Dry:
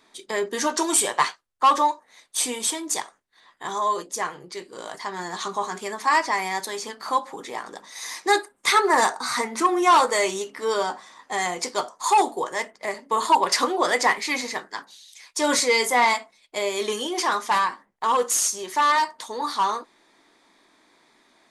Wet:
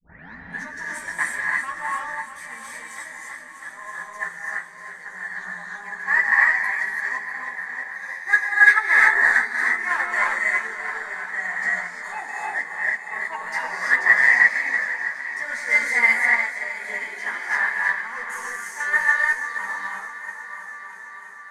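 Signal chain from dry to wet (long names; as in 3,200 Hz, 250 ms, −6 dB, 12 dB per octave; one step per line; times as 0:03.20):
turntable start at the beginning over 0.59 s
echo machine with several playback heads 324 ms, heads first and second, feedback 72%, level −13 dB
in parallel at −10 dB: hard clipping −22 dBFS, distortion −7 dB
on the sum: drawn EQ curve 150 Hz 0 dB, 220 Hz −5 dB, 320 Hz −18 dB, 630 Hz −9 dB, 1,200 Hz −6 dB, 1,800 Hz +15 dB, 2,900 Hz −14 dB, 12,000 Hz −10 dB
multi-voice chorus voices 6, 0.1 Hz, delay 15 ms, depth 3.7 ms
parametric band 85 Hz −14 dB 1.5 octaves
reverb whose tail is shaped and stops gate 370 ms rising, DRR −3.5 dB
expander for the loud parts 1.5 to 1, over −26 dBFS
level −1 dB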